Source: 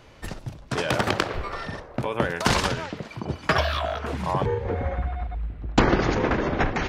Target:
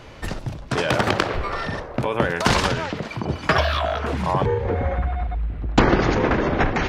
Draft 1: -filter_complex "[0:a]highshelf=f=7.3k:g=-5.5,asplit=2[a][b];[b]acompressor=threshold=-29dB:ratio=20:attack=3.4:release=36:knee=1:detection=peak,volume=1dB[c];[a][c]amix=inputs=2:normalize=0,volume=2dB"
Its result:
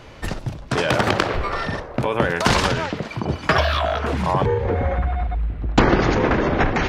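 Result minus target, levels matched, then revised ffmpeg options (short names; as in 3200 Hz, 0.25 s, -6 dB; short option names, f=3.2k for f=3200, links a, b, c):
compressor: peak gain reduction -5.5 dB
-filter_complex "[0:a]highshelf=f=7.3k:g=-5.5,asplit=2[a][b];[b]acompressor=threshold=-35dB:ratio=20:attack=3.4:release=36:knee=1:detection=peak,volume=1dB[c];[a][c]amix=inputs=2:normalize=0,volume=2dB"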